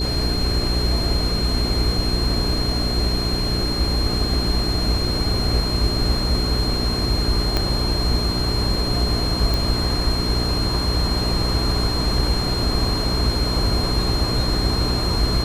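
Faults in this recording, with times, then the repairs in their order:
hum 60 Hz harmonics 7 -25 dBFS
tone 4200 Hz -25 dBFS
7.57 pop -6 dBFS
9.54 pop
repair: de-click; de-hum 60 Hz, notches 7; notch 4200 Hz, Q 30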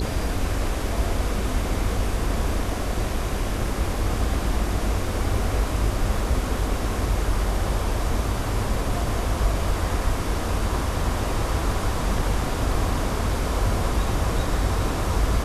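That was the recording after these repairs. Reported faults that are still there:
7.57 pop

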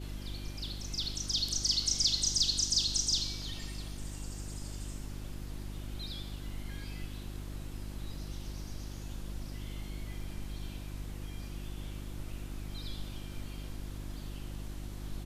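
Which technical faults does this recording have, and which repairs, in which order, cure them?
hum 50 Hz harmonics 7 -42 dBFS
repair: de-hum 50 Hz, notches 7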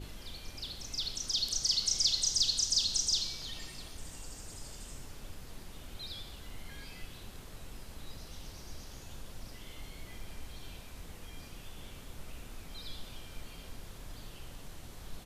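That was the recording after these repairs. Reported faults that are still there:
none

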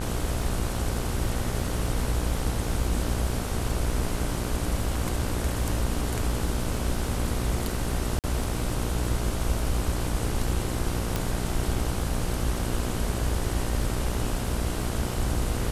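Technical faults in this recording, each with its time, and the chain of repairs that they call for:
buzz 60 Hz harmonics 26 -31 dBFS
crackle 30/s -35 dBFS
8.19–8.24 gap 48 ms
11.16 pop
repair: de-click; de-hum 60 Hz, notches 26; interpolate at 8.19, 48 ms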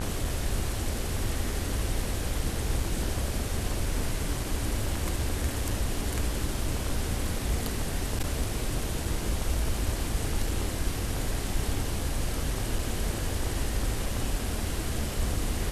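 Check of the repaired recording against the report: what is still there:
none

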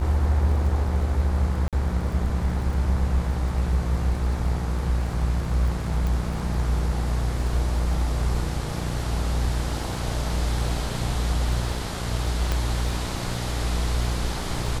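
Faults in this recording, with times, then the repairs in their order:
buzz 60 Hz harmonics 39 -29 dBFS
crackle 25/s -33 dBFS
1.68–1.73 gap 47 ms
6.07 pop
12.52 pop -10 dBFS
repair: de-click; de-hum 60 Hz, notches 39; interpolate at 1.68, 47 ms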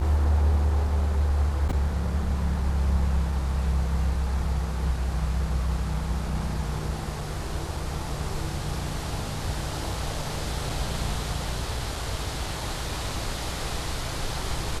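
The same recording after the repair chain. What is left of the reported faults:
12.52 pop

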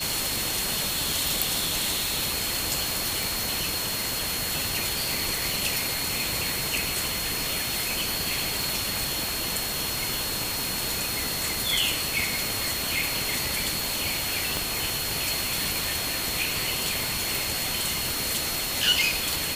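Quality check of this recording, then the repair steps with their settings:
tone 4300 Hz -33 dBFS
3.23 pop
8.63 pop
14.57 pop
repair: de-click; notch 4300 Hz, Q 30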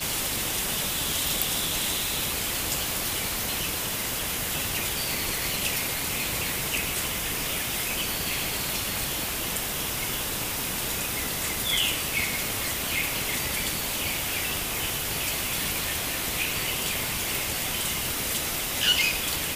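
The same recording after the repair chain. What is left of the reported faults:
none

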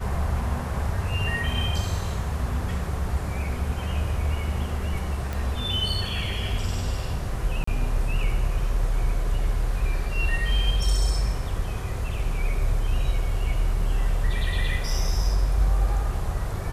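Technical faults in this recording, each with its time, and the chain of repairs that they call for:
5.33 pop
7.64–7.67 gap 34 ms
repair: de-click; interpolate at 7.64, 34 ms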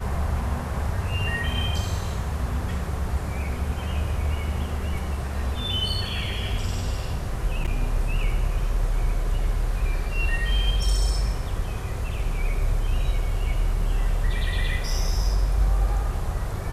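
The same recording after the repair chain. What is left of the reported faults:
none

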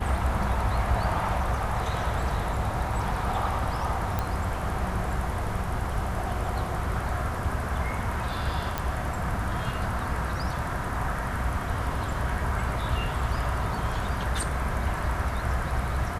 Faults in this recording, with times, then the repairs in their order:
4.19 pop
8.78 pop -13 dBFS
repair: de-click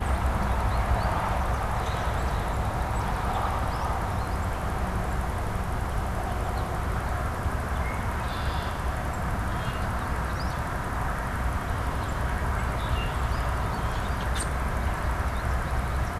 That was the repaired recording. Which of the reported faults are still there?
4.19 pop

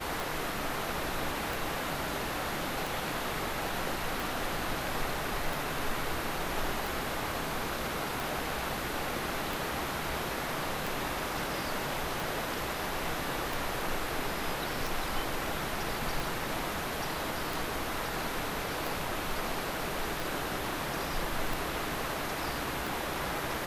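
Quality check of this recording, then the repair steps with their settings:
tick 45 rpm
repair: de-click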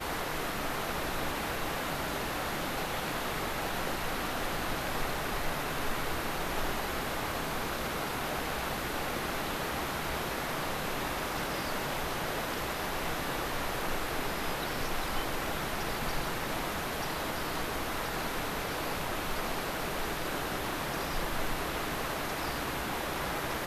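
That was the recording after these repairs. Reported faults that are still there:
none

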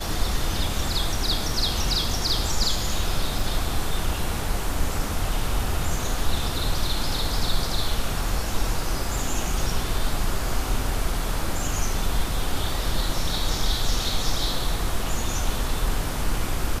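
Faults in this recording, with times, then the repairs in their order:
3.39 gap 3.3 ms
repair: interpolate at 3.39, 3.3 ms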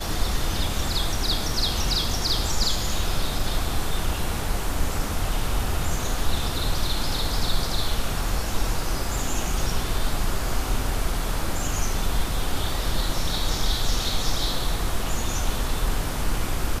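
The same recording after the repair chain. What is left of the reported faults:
none

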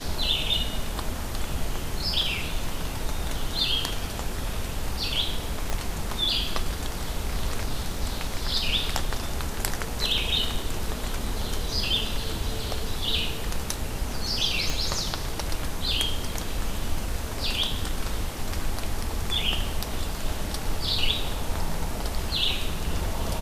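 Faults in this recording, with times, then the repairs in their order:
5.7 pop -13 dBFS
14.7 pop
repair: de-click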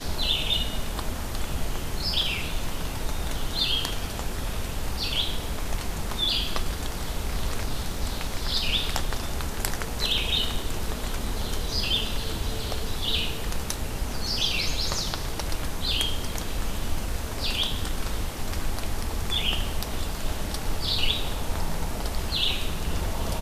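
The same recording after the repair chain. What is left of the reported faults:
5.7 pop
14.7 pop

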